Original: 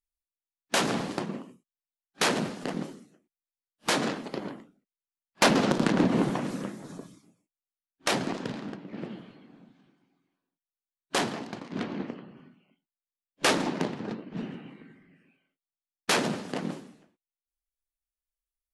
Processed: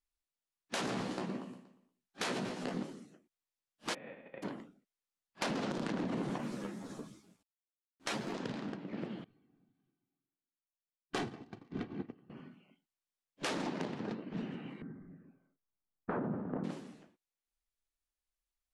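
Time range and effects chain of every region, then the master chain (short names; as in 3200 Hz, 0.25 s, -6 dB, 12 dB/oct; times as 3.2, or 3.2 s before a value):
0.83–2.83 doubler 16 ms -5.5 dB + feedback echo 0.118 s, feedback 42%, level -17 dB
3.93–4.42 spectral whitening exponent 0.3 + vocal tract filter e + bell 1800 Hz -5 dB 0.54 oct
6.38–8.34 companded quantiser 6-bit + ensemble effect
9.24–12.3 tone controls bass +13 dB, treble -5 dB + comb 2.6 ms, depth 46% + upward expander 2.5:1, over -38 dBFS
14.82–16.64 Chebyshev low-pass 1400 Hz, order 3 + tilt -2.5 dB/oct
whole clip: Bessel low-pass 9400 Hz; limiter -20.5 dBFS; compressor 2:1, threshold -41 dBFS; gain +1 dB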